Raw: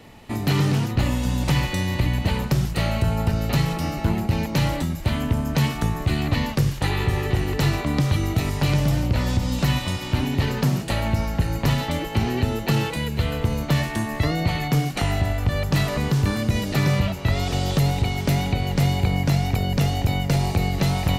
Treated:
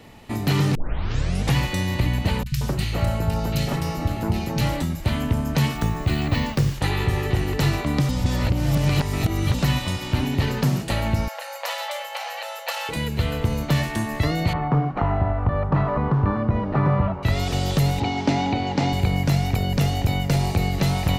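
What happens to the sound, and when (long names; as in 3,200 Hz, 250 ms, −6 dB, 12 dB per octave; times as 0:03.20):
0:00.75: tape start 0.81 s
0:02.43–0:04.61: three-band delay without the direct sound lows, highs, mids 30/180 ms, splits 150/1,900 Hz
0:05.76–0:06.75: bad sample-rate conversion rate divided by 2×, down filtered, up hold
0:08.09–0:09.54: reverse
0:11.28–0:12.89: linear-phase brick-wall high-pass 480 Hz
0:14.53–0:17.23: low-pass with resonance 1,100 Hz, resonance Q 2.4
0:18.00–0:18.93: loudspeaker in its box 110–6,400 Hz, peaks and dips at 150 Hz −7 dB, 280 Hz +10 dB, 840 Hz +10 dB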